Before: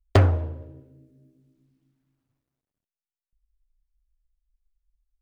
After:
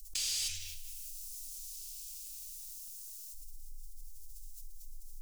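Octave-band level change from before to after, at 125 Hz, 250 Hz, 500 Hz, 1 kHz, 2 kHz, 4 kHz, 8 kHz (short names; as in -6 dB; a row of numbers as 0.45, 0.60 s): under -30 dB, under -40 dB, under -40 dB, under -35 dB, -12.0 dB, +5.5 dB, n/a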